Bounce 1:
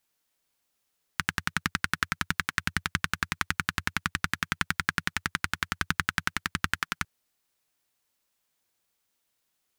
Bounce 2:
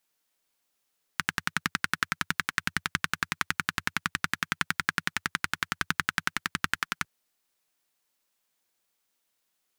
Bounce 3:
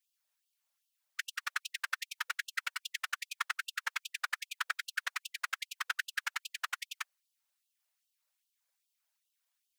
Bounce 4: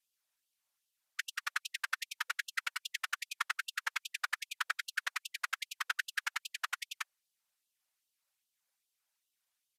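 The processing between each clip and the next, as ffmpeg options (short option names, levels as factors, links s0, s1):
-af "equalizer=f=67:t=o:w=1.7:g=-10"
-af "afftfilt=real='hypot(re,im)*cos(2*PI*random(0))':imag='hypot(re,im)*sin(2*PI*random(1))':win_size=512:overlap=0.75,afftfilt=real='re*gte(b*sr/1024,490*pow(2700/490,0.5+0.5*sin(2*PI*2.5*pts/sr)))':imag='im*gte(b*sr/1024,490*pow(2700/490,0.5+0.5*sin(2*PI*2.5*pts/sr)))':win_size=1024:overlap=0.75"
-af "aresample=32000,aresample=44100"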